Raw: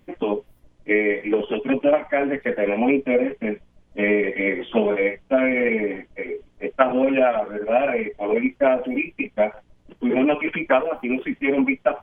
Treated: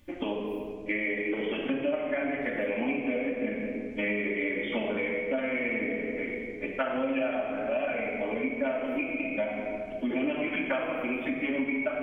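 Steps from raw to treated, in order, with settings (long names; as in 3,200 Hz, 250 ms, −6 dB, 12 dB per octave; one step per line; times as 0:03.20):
high-shelf EQ 2,200 Hz +11 dB
rectangular room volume 2,400 cubic metres, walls mixed, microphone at 2.5 metres
downward compressor 3 to 1, threshold −22 dBFS, peak gain reduction 12 dB
parametric band 78 Hz +8 dB 1.3 octaves
level −7.5 dB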